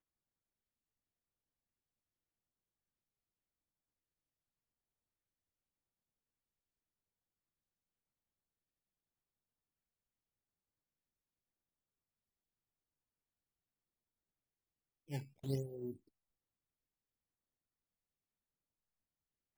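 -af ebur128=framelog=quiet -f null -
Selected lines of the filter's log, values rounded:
Integrated loudness:
  I:         -44.0 LUFS
  Threshold: -54.4 LUFS
Loudness range:
  LRA:         7.5 LU
  Threshold: -69.4 LUFS
  LRA low:   -55.9 LUFS
  LRA high:  -48.4 LUFS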